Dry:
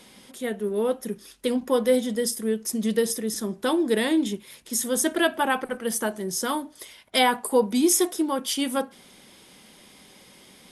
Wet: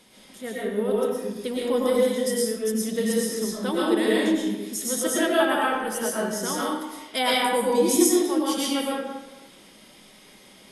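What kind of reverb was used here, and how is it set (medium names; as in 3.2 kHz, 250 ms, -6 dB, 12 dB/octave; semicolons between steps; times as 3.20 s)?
algorithmic reverb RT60 1.1 s, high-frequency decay 0.7×, pre-delay 75 ms, DRR -6 dB; trim -5.5 dB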